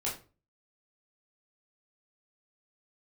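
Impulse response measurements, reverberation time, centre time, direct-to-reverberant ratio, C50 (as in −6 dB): 0.35 s, 28 ms, −6.0 dB, 8.0 dB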